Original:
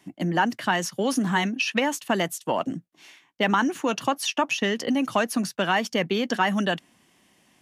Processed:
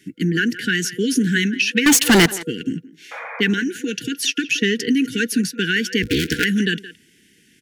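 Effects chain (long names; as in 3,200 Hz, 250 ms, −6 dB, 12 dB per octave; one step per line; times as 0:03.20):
0:06.02–0:06.45: sub-harmonics by changed cycles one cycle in 3, inverted
brick-wall band-stop 490–1,400 Hz
dynamic equaliser 600 Hz, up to −4 dB, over −42 dBFS, Q 2
0:01.86–0:02.26: leveller curve on the samples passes 5
0:03.11–0:03.41: sound drawn into the spectrogram noise 450–2,500 Hz −39 dBFS
0:03.55–0:04.10: downward compressor 2.5 to 1, threshold −28 dBFS, peak gain reduction 5 dB
far-end echo of a speakerphone 170 ms, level −15 dB
level +6.5 dB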